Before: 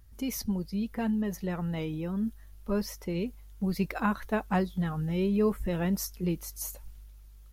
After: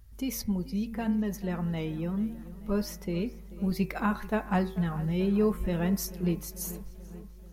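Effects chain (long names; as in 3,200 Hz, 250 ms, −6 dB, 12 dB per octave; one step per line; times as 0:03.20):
parametric band 60 Hz +3 dB 2.6 octaves
hum removal 75.98 Hz, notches 35
on a send: feedback echo with a low-pass in the loop 437 ms, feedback 64%, low-pass 3,600 Hz, level −17 dB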